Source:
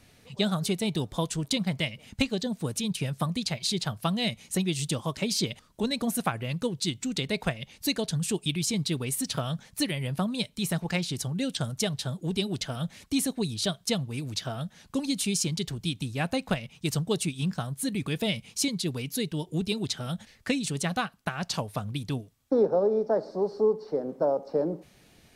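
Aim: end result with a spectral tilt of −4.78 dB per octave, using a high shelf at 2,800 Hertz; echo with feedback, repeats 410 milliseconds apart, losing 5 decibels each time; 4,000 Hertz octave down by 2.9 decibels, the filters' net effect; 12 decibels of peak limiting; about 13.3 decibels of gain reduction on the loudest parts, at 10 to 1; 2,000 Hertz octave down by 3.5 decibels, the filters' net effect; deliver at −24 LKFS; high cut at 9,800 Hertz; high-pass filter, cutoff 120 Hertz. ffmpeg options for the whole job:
ffmpeg -i in.wav -af "highpass=120,lowpass=9800,equalizer=frequency=2000:width_type=o:gain=-4.5,highshelf=frequency=2800:gain=3,equalizer=frequency=4000:width_type=o:gain=-4.5,acompressor=threshold=-33dB:ratio=10,alimiter=level_in=7.5dB:limit=-24dB:level=0:latency=1,volume=-7.5dB,aecho=1:1:410|820|1230|1640|2050|2460|2870:0.562|0.315|0.176|0.0988|0.0553|0.031|0.0173,volume=15.5dB" out.wav

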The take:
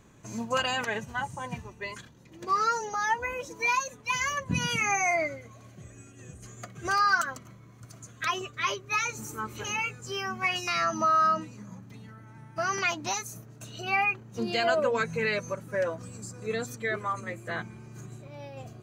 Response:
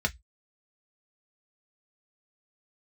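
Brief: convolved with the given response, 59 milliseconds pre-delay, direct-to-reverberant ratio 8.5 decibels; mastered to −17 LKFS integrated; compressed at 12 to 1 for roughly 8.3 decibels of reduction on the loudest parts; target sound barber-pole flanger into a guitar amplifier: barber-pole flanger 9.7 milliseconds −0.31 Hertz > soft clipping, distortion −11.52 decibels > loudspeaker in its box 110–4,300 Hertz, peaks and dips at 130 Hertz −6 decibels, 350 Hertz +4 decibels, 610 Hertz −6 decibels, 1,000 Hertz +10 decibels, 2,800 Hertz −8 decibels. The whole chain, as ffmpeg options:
-filter_complex "[0:a]acompressor=threshold=-28dB:ratio=12,asplit=2[link_01][link_02];[1:a]atrim=start_sample=2205,adelay=59[link_03];[link_02][link_03]afir=irnorm=-1:irlink=0,volume=-17dB[link_04];[link_01][link_04]amix=inputs=2:normalize=0,asplit=2[link_05][link_06];[link_06]adelay=9.7,afreqshift=-0.31[link_07];[link_05][link_07]amix=inputs=2:normalize=1,asoftclip=threshold=-34dB,highpass=110,equalizer=frequency=130:width_type=q:width=4:gain=-6,equalizer=frequency=350:width_type=q:width=4:gain=4,equalizer=frequency=610:width_type=q:width=4:gain=-6,equalizer=frequency=1000:width_type=q:width=4:gain=10,equalizer=frequency=2800:width_type=q:width=4:gain=-8,lowpass=frequency=4300:width=0.5412,lowpass=frequency=4300:width=1.3066,volume=22dB"

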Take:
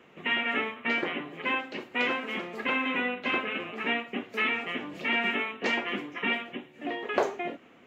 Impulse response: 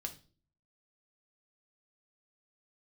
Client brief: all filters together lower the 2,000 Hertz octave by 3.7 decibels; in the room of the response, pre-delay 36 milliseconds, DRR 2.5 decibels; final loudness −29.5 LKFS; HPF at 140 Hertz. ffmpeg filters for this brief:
-filter_complex "[0:a]highpass=140,equalizer=frequency=2000:width_type=o:gain=-4.5,asplit=2[link_01][link_02];[1:a]atrim=start_sample=2205,adelay=36[link_03];[link_02][link_03]afir=irnorm=-1:irlink=0,volume=-0.5dB[link_04];[link_01][link_04]amix=inputs=2:normalize=0,volume=0.5dB"

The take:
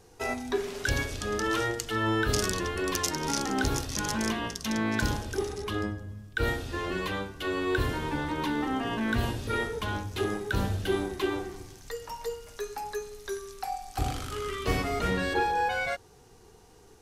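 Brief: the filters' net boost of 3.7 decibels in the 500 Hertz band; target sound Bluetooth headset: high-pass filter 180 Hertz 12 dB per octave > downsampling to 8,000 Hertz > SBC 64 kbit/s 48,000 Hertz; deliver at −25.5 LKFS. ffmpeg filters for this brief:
ffmpeg -i in.wav -af "highpass=180,equalizer=frequency=500:width_type=o:gain=5,aresample=8000,aresample=44100,volume=4.5dB" -ar 48000 -c:a sbc -b:a 64k out.sbc

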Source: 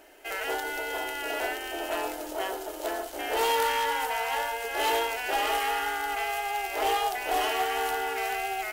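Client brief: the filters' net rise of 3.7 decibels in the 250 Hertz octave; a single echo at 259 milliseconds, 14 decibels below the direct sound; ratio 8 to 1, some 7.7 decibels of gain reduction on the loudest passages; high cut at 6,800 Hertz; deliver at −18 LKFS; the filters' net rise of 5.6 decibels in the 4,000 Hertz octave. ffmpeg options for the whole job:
ffmpeg -i in.wav -af "lowpass=6800,equalizer=frequency=250:width_type=o:gain=5.5,equalizer=frequency=4000:width_type=o:gain=8.5,acompressor=threshold=-29dB:ratio=8,aecho=1:1:259:0.2,volume=14dB" out.wav

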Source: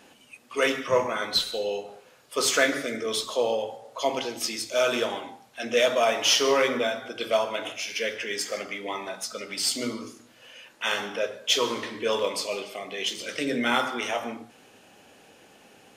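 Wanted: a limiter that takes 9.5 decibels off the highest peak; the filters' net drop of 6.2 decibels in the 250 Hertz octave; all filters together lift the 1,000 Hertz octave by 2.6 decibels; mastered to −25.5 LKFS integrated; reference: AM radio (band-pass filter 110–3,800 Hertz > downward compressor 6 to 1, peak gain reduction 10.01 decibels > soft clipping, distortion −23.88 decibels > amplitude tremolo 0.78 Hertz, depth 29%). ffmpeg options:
ffmpeg -i in.wav -af "equalizer=frequency=250:width_type=o:gain=-7.5,equalizer=frequency=1000:width_type=o:gain=4,alimiter=limit=-16dB:level=0:latency=1,highpass=110,lowpass=3800,acompressor=threshold=-31dB:ratio=6,asoftclip=threshold=-23.5dB,tremolo=f=0.78:d=0.29,volume=11.5dB" out.wav

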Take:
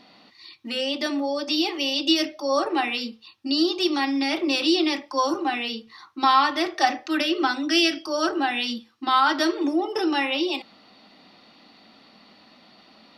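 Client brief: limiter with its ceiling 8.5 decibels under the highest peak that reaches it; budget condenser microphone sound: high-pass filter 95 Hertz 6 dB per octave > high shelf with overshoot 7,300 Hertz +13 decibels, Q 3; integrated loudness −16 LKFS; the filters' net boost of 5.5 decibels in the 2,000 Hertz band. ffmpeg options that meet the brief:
ffmpeg -i in.wav -af "equalizer=frequency=2000:width_type=o:gain=8.5,alimiter=limit=-9.5dB:level=0:latency=1,highpass=frequency=95:poles=1,highshelf=frequency=7300:width_type=q:width=3:gain=13,volume=7dB" out.wav

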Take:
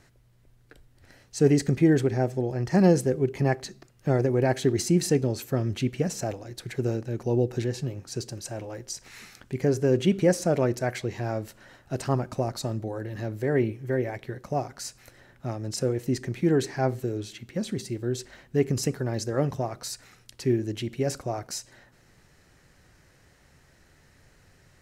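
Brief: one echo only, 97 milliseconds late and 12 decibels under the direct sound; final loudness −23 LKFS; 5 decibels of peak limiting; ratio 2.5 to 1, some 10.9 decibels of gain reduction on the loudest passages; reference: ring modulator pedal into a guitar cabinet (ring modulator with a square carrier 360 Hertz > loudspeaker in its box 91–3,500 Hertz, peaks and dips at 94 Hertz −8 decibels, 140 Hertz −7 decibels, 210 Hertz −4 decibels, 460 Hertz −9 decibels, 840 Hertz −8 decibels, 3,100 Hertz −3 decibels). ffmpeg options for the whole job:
ffmpeg -i in.wav -af "acompressor=threshold=-31dB:ratio=2.5,alimiter=limit=-23.5dB:level=0:latency=1,aecho=1:1:97:0.251,aeval=exprs='val(0)*sgn(sin(2*PI*360*n/s))':channel_layout=same,highpass=91,equalizer=frequency=94:width_type=q:width=4:gain=-8,equalizer=frequency=140:width_type=q:width=4:gain=-7,equalizer=frequency=210:width_type=q:width=4:gain=-4,equalizer=frequency=460:width_type=q:width=4:gain=-9,equalizer=frequency=840:width_type=q:width=4:gain=-8,equalizer=frequency=3100:width_type=q:width=4:gain=-3,lowpass=frequency=3500:width=0.5412,lowpass=frequency=3500:width=1.3066,volume=16dB" out.wav

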